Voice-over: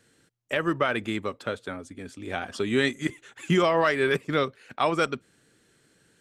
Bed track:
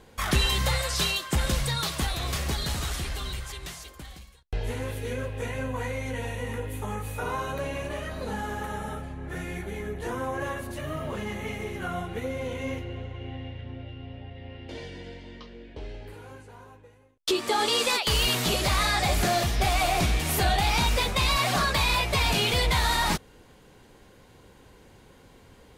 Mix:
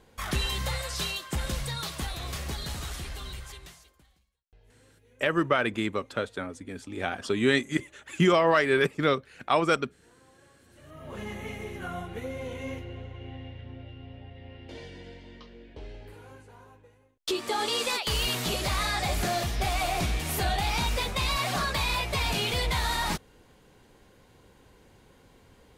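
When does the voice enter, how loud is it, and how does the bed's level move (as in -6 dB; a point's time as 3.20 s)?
4.70 s, +0.5 dB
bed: 3.53 s -5.5 dB
4.41 s -29.5 dB
10.55 s -29.5 dB
11.21 s -4 dB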